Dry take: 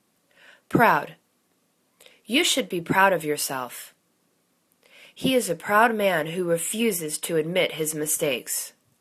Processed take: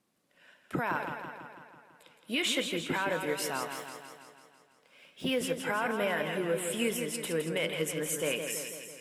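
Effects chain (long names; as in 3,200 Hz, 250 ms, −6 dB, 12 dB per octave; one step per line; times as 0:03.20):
0:03.73–0:05.38: running median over 3 samples
high-shelf EQ 7,100 Hz −4 dB
brickwall limiter −15 dBFS, peak gain reduction 11.5 dB
dynamic equaliser 2,000 Hz, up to +4 dB, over −40 dBFS, Q 0.76
feedback echo with a swinging delay time 165 ms, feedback 61%, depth 65 cents, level −7 dB
level −7.5 dB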